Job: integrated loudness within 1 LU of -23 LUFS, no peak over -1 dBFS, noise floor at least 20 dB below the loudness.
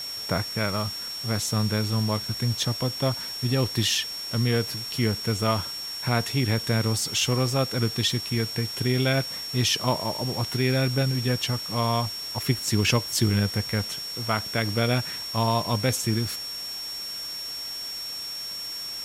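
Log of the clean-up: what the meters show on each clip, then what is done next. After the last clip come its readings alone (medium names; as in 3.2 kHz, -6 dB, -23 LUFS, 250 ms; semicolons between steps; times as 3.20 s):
steady tone 5.5 kHz; tone level -32 dBFS; noise floor -34 dBFS; noise floor target -46 dBFS; loudness -25.5 LUFS; peak level -9.0 dBFS; loudness target -23.0 LUFS
-> band-stop 5.5 kHz, Q 30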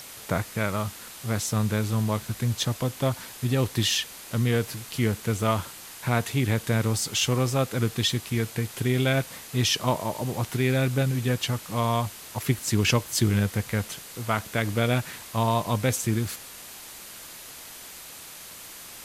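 steady tone not found; noise floor -43 dBFS; noise floor target -47 dBFS
-> noise reduction 6 dB, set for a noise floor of -43 dBFS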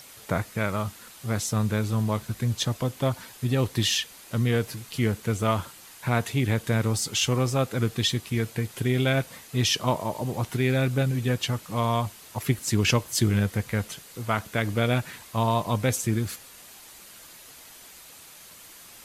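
noise floor -48 dBFS; loudness -26.5 LUFS; peak level -9.5 dBFS; loudness target -23.0 LUFS
-> trim +3.5 dB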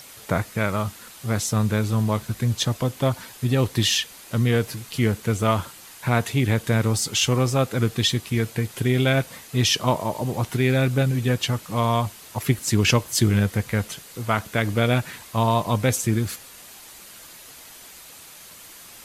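loudness -23.0 LUFS; peak level -6.0 dBFS; noise floor -44 dBFS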